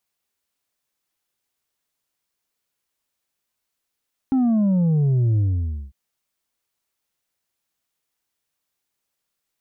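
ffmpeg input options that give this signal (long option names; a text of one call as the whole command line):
ffmpeg -f lavfi -i "aevalsrc='0.158*clip((1.6-t)/0.54,0,1)*tanh(1.58*sin(2*PI*270*1.6/log(65/270)*(exp(log(65/270)*t/1.6)-1)))/tanh(1.58)':duration=1.6:sample_rate=44100" out.wav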